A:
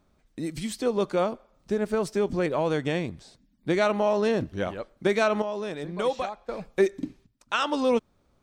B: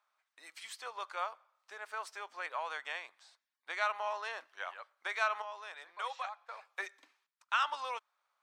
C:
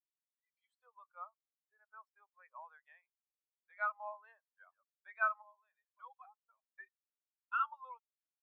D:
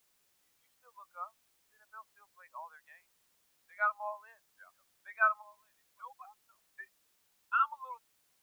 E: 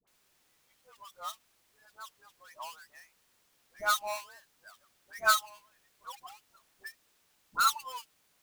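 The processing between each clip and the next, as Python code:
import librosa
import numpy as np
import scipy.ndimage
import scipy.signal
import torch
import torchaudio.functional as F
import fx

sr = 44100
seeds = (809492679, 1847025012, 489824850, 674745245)

y1 = scipy.signal.sosfilt(scipy.signal.butter(4, 1000.0, 'highpass', fs=sr, output='sos'), x)
y1 = fx.high_shelf(y1, sr, hz=2500.0, db=-12.0)
y2 = fx.spectral_expand(y1, sr, expansion=2.5)
y2 = y2 * 10.0 ** (-4.5 / 20.0)
y3 = fx.dmg_noise_colour(y2, sr, seeds[0], colour='white', level_db=-79.0)
y3 = y3 * 10.0 ** (5.5 / 20.0)
y4 = fx.halfwave_hold(y3, sr)
y4 = fx.dispersion(y4, sr, late='highs', ms=75.0, hz=930.0)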